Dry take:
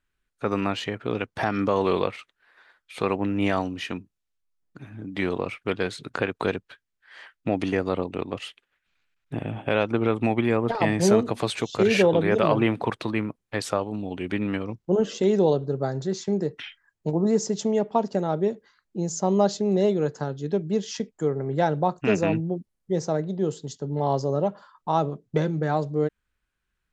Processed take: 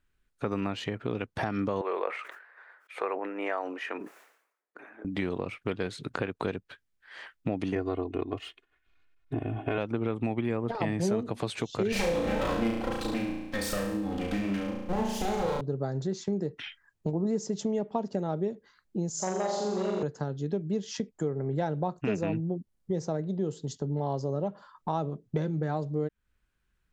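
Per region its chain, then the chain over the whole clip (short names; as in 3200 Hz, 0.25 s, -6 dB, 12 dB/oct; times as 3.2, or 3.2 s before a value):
1.81–5.05 HPF 430 Hz 24 dB/oct + resonant high shelf 2600 Hz -10.5 dB, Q 1.5 + sustainer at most 83 dB/s
7.75–9.78 median filter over 3 samples + high shelf 3100 Hz -9 dB + comb 2.8 ms, depth 83%
11.92–15.61 minimum comb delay 3.8 ms + high shelf 3800 Hz +7 dB + flutter echo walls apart 6 m, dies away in 0.71 s
19.1–20.03 HPF 640 Hz 6 dB/oct + flutter echo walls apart 7.4 m, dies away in 1.3 s + core saturation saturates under 830 Hz
whole clip: low shelf 400 Hz +5.5 dB; compressor 2.5:1, threshold -31 dBFS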